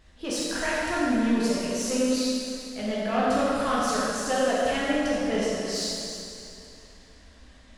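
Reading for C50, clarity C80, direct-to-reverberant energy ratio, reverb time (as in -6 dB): -4.0 dB, -2.0 dB, -8.0 dB, 2.7 s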